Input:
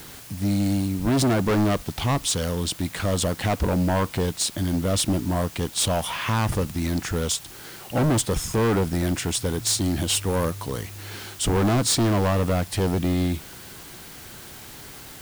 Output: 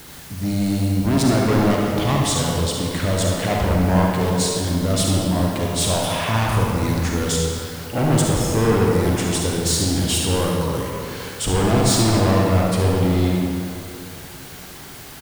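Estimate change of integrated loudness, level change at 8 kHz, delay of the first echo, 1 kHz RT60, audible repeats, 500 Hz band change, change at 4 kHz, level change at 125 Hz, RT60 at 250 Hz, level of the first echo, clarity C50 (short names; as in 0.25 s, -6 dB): +4.0 dB, +2.5 dB, 72 ms, 2.8 s, 1, +5.0 dB, +3.5 dB, +5.0 dB, 2.8 s, -8.0 dB, -1.5 dB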